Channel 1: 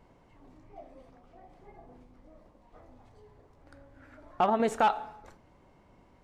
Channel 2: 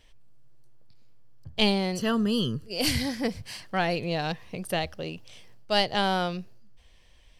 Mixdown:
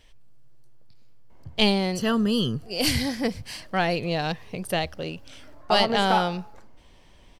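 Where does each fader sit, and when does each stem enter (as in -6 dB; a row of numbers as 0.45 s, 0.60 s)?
+0.5 dB, +2.5 dB; 1.30 s, 0.00 s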